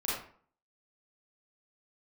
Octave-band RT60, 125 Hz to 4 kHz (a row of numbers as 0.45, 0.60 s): 0.50, 0.55, 0.50, 0.50, 0.45, 0.35 s